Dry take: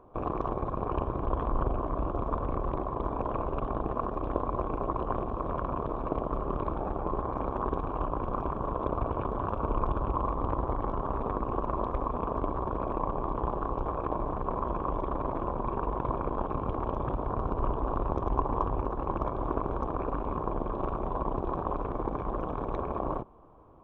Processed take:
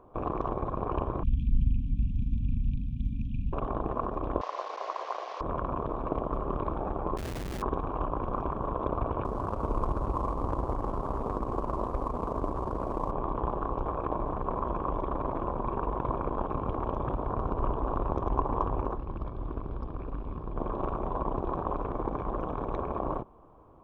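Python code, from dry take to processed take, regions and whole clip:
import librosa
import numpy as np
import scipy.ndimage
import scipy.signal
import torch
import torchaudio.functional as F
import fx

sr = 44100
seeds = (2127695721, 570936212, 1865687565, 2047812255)

y = fx.chain(x, sr, fx.brickwall_bandstop(low_hz=270.0, high_hz=2300.0),
    fx.low_shelf(hz=260.0, db=6.0), at=(1.23, 3.53))
y = fx.chain(y, sr, fx.delta_mod(bps=32000, step_db=-33.5),
    fx.cheby2_highpass(hz=160.0, order=4, stop_db=60),
    fx.high_shelf(hz=2900.0, db=-11.5), at=(4.41, 5.41))
y = fx.chain(y, sr, fx.gaussian_blur(sigma=13.0),
    fx.schmitt(flips_db=-44.0), at=(7.17, 7.62))
y = fx.chain(y, sr, fx.cvsd(bps=64000),
    fx.lowpass(hz=1500.0, slope=6), at=(9.24, 13.11))
y = fx.chain(y, sr, fx.peak_eq(hz=810.0, db=-12.5, octaves=3.0),
    fx.resample_bad(factor=4, down='none', up='filtered'), at=(18.97, 20.57))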